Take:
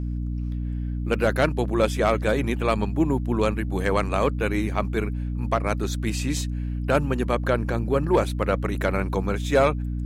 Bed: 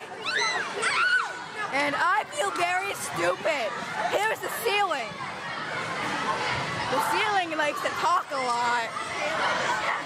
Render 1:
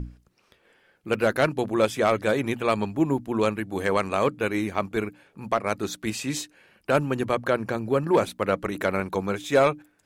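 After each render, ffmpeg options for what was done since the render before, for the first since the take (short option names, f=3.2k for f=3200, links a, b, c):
-af "bandreject=f=60:t=h:w=6,bandreject=f=120:t=h:w=6,bandreject=f=180:t=h:w=6,bandreject=f=240:t=h:w=6,bandreject=f=300:t=h:w=6"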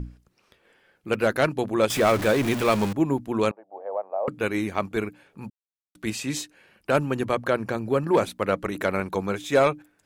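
-filter_complex "[0:a]asettb=1/sr,asplit=3[a][b][c];[a]atrim=end=1.904[d];[b]atrim=start=1.9:end=2.93,asetpts=PTS-STARTPTS,afade=t=in:d=0.004:c=qsin,afade=t=out:st=1.026:d=0.004:c=qsin,aeval=exprs='val(0)+0.5*0.0562*sgn(val(0))':c=same[e];[c]atrim=start=2.926[f];[d][e]acrossfade=d=0.004:c1=hsin:c2=qsin[g];[g][f]acrossfade=d=0.004:c1=qsin:c2=hsin,asettb=1/sr,asplit=3[h][i][j];[h]atrim=end=3.514[k];[i]atrim=start=3.51:end=4.28,asetpts=PTS-STARTPTS,afade=t=in:d=0.004:c=qsin,afade=t=out:st=0.766:d=0.004:c=qsin,asuperpass=centerf=670:order=4:qfactor=2.3[l];[j]atrim=start=4.276[m];[k][l]acrossfade=d=0.004:c1=hsin:c2=qsin[n];[n][m]acrossfade=d=0.004:c1=qsin:c2=hsin,asplit=3[o][p][q];[o]atrim=end=5.5,asetpts=PTS-STARTPTS,afade=t=out:st=5.496:d=0.004:c=hsin[r];[p]atrim=start=5.5:end=5.95,asetpts=PTS-STARTPTS,volume=0[s];[q]atrim=start=5.95,asetpts=PTS-STARTPTS,afade=t=in:d=0.004:c=hsin[t];[r][s][t]concat=n=3:v=0:a=1"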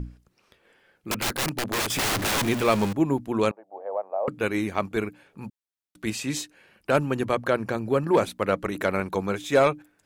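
-filter_complex "[0:a]asettb=1/sr,asplit=3[a][b][c];[a]atrim=end=1.114[d];[b]atrim=start=1.11:end=2.43,asetpts=PTS-STARTPTS,afade=t=in:d=0.004:c=qsin,afade=t=out:st=1.316:d=0.004:c=qsin,aeval=exprs='(mod(11.2*val(0)+1,2)-1)/11.2':c=same[e];[c]atrim=start=2.426[f];[d][e]acrossfade=d=0.004:c1=hsin:c2=qsin[g];[g][f]acrossfade=d=0.004:c1=qsin:c2=hsin"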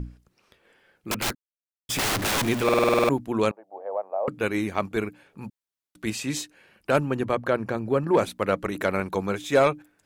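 -filter_complex "[0:a]asettb=1/sr,asplit=3[a][b][c];[a]atrim=end=7.004[d];[b]atrim=start=7:end=8.19,asetpts=PTS-STARTPTS,afade=t=in:d=0.004:c=qsin,afade=t=out:st=1.186:d=0.004:c=qsin,highshelf=f=3.1k:g=-6.5[e];[c]atrim=start=8.186[f];[d][e]acrossfade=d=0.004:c1=hsin:c2=qsin[g];[g][f]acrossfade=d=0.004:c1=qsin:c2=hsin,asplit=12[h][i][j][k][l][m][n][o][p][q][r][s];[h]atrim=end=1.35,asetpts=PTS-STARTPTS,afade=t=out:st=1.346:d=0.004:c=hsin[t];[i]atrim=start=1.35:end=1.89,asetpts=PTS-STARTPTS,volume=0[u];[j]atrim=start=1.89:end=2.692,asetpts=PTS-STARTPTS,afade=t=in:d=0.004:c=hsin[v];[k]atrim=start=2.638:end=2.692[w];[l]atrim=start=2.638:end=2.692[x];[m]atrim=start=2.638:end=2.692[y];[n]atrim=start=2.638:end=2.692[z];[o]atrim=start=2.638:end=2.692[aa];[p]atrim=start=2.638:end=2.692[ab];[q]atrim=start=2.638:end=2.692[ac];[r]atrim=start=2.638:end=2.692[ad];[s]atrim=start=3.088[ae];[t][u][v]concat=n=3:v=0:a=1[af];[af][w]acrossfade=d=0.004:c1=hsin:c2=hsin[ag];[ag][x]acrossfade=d=0.004:c1=hsin:c2=hsin[ah];[ah][y]acrossfade=d=0.004:c1=hsin:c2=hsin[ai];[ai][z]acrossfade=d=0.004:c1=hsin:c2=hsin[aj];[aj][aa]acrossfade=d=0.004:c1=hsin:c2=hsin[ak];[ak][ab]acrossfade=d=0.004:c1=hsin:c2=hsin[al];[al][ac]acrossfade=d=0.004:c1=hsin:c2=hsin[am];[am][ad]acrossfade=d=0.004:c1=hsin:c2=hsin[an];[an][ae]acrossfade=d=0.004:c1=hsin:c2=hsin"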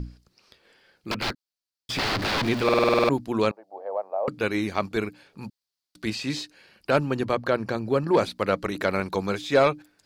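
-filter_complex "[0:a]acrossover=split=3300[a][b];[b]acompressor=threshold=-45dB:ratio=4:attack=1:release=60[c];[a][c]amix=inputs=2:normalize=0,equalizer=f=4.6k:w=2:g=13"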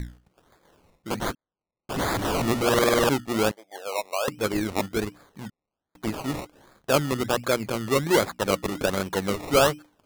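-af "acrusher=samples=22:mix=1:aa=0.000001:lfo=1:lforange=13.2:lforate=1.3"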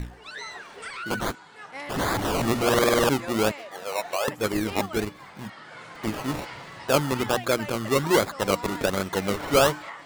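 -filter_complex "[1:a]volume=-12dB[a];[0:a][a]amix=inputs=2:normalize=0"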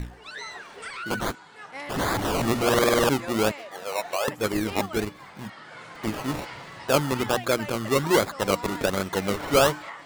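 -af anull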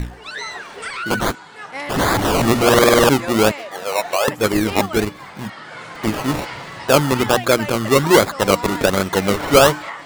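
-af "volume=8.5dB,alimiter=limit=-2dB:level=0:latency=1"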